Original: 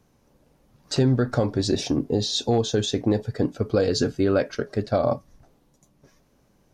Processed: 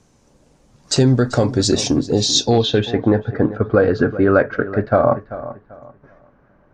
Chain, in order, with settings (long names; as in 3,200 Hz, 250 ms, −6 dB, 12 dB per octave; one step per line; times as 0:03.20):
feedback echo with a low-pass in the loop 389 ms, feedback 28%, low-pass 4,400 Hz, level −14.5 dB
low-pass filter sweep 7,700 Hz → 1,500 Hz, 0:02.29–0:03.01
level +6 dB